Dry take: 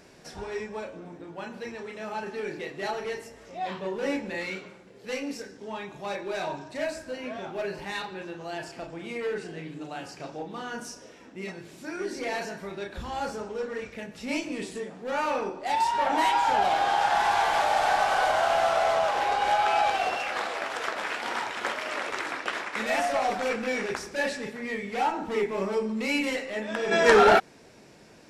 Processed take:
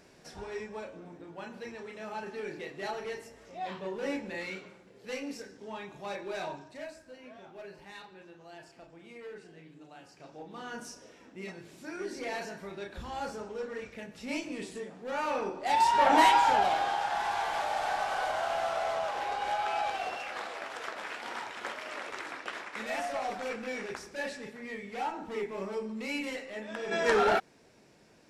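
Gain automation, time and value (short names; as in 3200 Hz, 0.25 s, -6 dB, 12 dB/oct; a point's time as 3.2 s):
6.44 s -5 dB
6.97 s -14 dB
10.1 s -14 dB
10.69 s -5 dB
15.18 s -5 dB
16.18 s +3.5 dB
17.04 s -8 dB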